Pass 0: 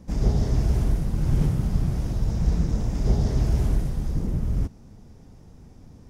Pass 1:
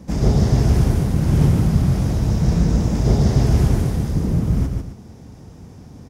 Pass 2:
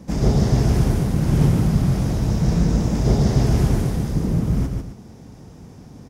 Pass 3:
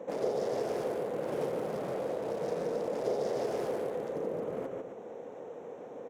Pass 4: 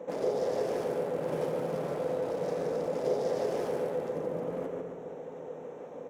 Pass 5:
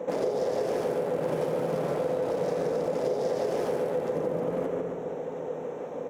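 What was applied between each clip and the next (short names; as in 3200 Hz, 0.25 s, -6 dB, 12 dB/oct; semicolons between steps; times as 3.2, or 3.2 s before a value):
HPF 66 Hz; on a send: tapped delay 0.146/0.26 s -5/-13.5 dB; on the sum: gain +8 dB
bell 78 Hz -5.5 dB 0.72 oct
Wiener smoothing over 9 samples; resonant high-pass 500 Hz, resonance Q 4.9; compressor 2:1, threshold -39 dBFS, peak gain reduction 13 dB
reverb RT60 1.9 s, pre-delay 3 ms, DRR 5.5 dB
compressor, threshold -32 dBFS, peak gain reduction 7.5 dB; gain +7.5 dB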